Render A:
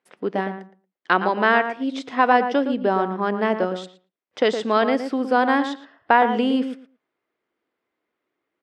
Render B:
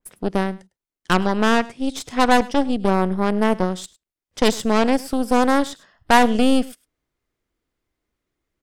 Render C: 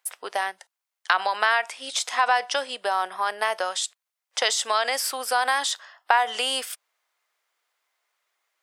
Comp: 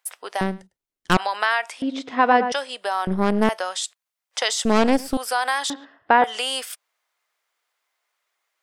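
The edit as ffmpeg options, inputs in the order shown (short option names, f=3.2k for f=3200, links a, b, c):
-filter_complex "[1:a]asplit=3[a][b][c];[0:a]asplit=2[d][e];[2:a]asplit=6[f][g][h][i][j][k];[f]atrim=end=0.412[l];[a]atrim=start=0.408:end=1.172[m];[g]atrim=start=1.168:end=1.822[n];[d]atrim=start=1.818:end=2.522[o];[h]atrim=start=2.518:end=3.072[p];[b]atrim=start=3.068:end=3.492[q];[i]atrim=start=3.488:end=4.652[r];[c]atrim=start=4.648:end=5.172[s];[j]atrim=start=5.168:end=5.702[t];[e]atrim=start=5.698:end=6.242[u];[k]atrim=start=6.238[v];[l][m]acrossfade=d=0.004:c1=hsin:c2=hsin[w];[w][n]acrossfade=d=0.004:c1=hsin:c2=hsin[x];[x][o]acrossfade=d=0.004:c1=hsin:c2=hsin[y];[y][p]acrossfade=d=0.004:c1=hsin:c2=hsin[z];[z][q]acrossfade=d=0.004:c1=hsin:c2=hsin[aa];[aa][r]acrossfade=d=0.004:c1=hsin:c2=hsin[ab];[ab][s]acrossfade=d=0.004:c1=hsin:c2=hsin[ac];[ac][t]acrossfade=d=0.004:c1=hsin:c2=hsin[ad];[ad][u]acrossfade=d=0.004:c1=hsin:c2=hsin[ae];[ae][v]acrossfade=d=0.004:c1=hsin:c2=hsin"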